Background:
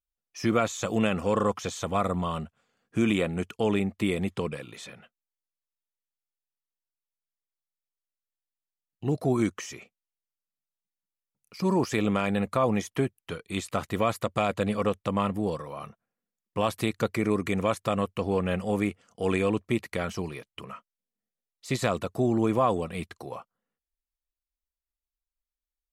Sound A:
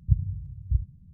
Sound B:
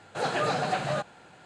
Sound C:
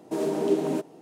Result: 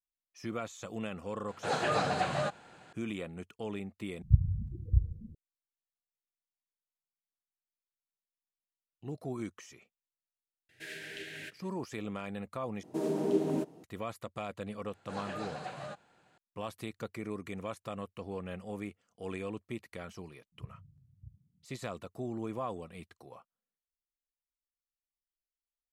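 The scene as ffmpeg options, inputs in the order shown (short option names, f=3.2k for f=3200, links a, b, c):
-filter_complex "[2:a]asplit=2[a][b];[1:a]asplit=2[c][d];[3:a]asplit=2[e][f];[0:a]volume=-13.5dB[g];[c]asplit=5[h][i][j][k][l];[i]adelay=135,afreqshift=-140,volume=-17.5dB[m];[j]adelay=270,afreqshift=-280,volume=-24.8dB[n];[k]adelay=405,afreqshift=-420,volume=-32.2dB[o];[l]adelay=540,afreqshift=-560,volume=-39.5dB[p];[h][m][n][o][p]amix=inputs=5:normalize=0[q];[e]firequalizer=gain_entry='entry(110,0);entry(200,-25);entry(520,-19);entry(1100,-30);entry(1600,12);entry(5900,-4)':delay=0.05:min_phase=1[r];[f]equalizer=f=82:t=o:w=3:g=10[s];[d]highpass=190[t];[g]asplit=3[u][v][w];[u]atrim=end=4.224[x];[q]atrim=end=1.13,asetpts=PTS-STARTPTS,volume=-1.5dB[y];[v]atrim=start=5.346:end=12.834[z];[s]atrim=end=1.01,asetpts=PTS-STARTPTS,volume=-8dB[aa];[w]atrim=start=13.836[ab];[a]atrim=end=1.45,asetpts=PTS-STARTPTS,volume=-3dB,afade=t=in:d=0.004:c=hsin,afade=t=out:st=1.446:d=0.004:c=hsin,adelay=1480[ac];[r]atrim=end=1.01,asetpts=PTS-STARTPTS,volume=-4.5dB,afade=t=in:d=0.004:c=hsin,afade=t=out:st=1.006:d=0.004:c=hsin,adelay=10690[ad];[b]atrim=end=1.45,asetpts=PTS-STARTPTS,volume=-14dB,afade=t=in:d=0.004:c=hsin,afade=t=out:st=1.446:d=0.004:c=hsin,adelay=14930[ae];[t]atrim=end=1.13,asetpts=PTS-STARTPTS,volume=-12.5dB,afade=t=in:d=0.004:c=hsin,afade=t=out:st=1.126:d=0.004:c=hsin,adelay=904932S[af];[x][y]acrossfade=d=0.004:c1=hsin:c2=hsin[ag];[ag][z]acrossfade=d=0.004:c1=hsin:c2=hsin[ah];[ah][aa]acrossfade=d=0.004:c1=hsin:c2=hsin[ai];[ai][ab]acrossfade=d=0.004:c1=hsin:c2=hsin[aj];[aj][ac][ad][ae][af]amix=inputs=5:normalize=0"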